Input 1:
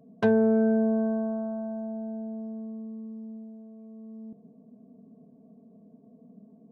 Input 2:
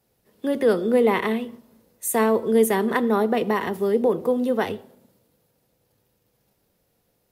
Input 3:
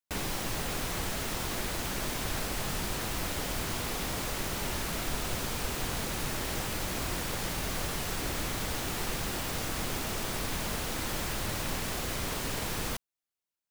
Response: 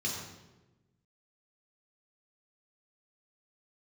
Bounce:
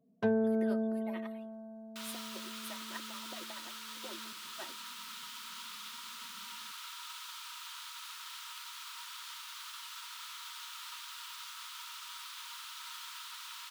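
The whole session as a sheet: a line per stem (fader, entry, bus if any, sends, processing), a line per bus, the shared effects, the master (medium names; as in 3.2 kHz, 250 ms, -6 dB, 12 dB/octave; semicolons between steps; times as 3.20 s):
-7.0 dB, 0.00 s, no send, none
-17.5 dB, 0.00 s, no send, harmonic-percussive separation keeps percussive; high-pass 140 Hz; comb 3.2 ms, depth 56%
+2.5 dB, 1.85 s, no send, rippled Chebyshev high-pass 920 Hz, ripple 9 dB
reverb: none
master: upward expansion 1.5:1, over -45 dBFS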